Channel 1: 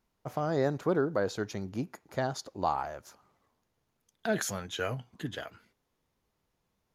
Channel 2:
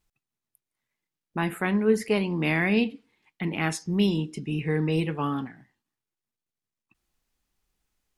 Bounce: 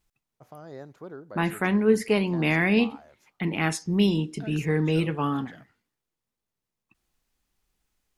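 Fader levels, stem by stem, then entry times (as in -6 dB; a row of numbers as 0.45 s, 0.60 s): -13.5 dB, +1.5 dB; 0.15 s, 0.00 s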